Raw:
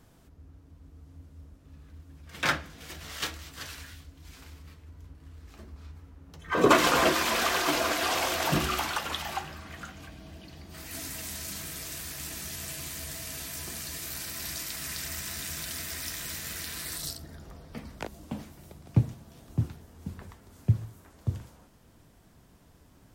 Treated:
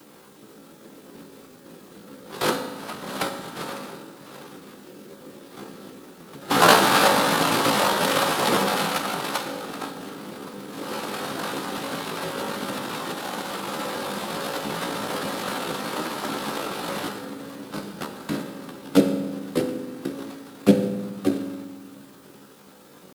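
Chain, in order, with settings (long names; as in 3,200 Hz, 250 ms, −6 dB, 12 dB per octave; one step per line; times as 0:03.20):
dynamic equaliser 2,200 Hz, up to +3 dB, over −46 dBFS, Q 6.7
in parallel at −1.5 dB: downward compressor 8 to 1, threshold −37 dBFS, peak gain reduction 21.5 dB
on the sum: decimation without filtering 24×
cochlear-implant simulation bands 4
bit-depth reduction 10 bits, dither triangular
pitch shifter +8 semitones
on a send at −5 dB: convolution reverb RT60 1.3 s, pre-delay 3 ms
on the sum: level +4.5 dB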